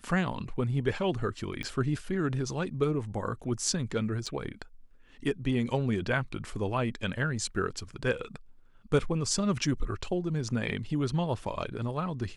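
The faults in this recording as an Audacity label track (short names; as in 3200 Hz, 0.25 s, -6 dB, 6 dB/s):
1.630000	1.630000	pop -23 dBFS
4.260000	4.270000	gap 5.5 ms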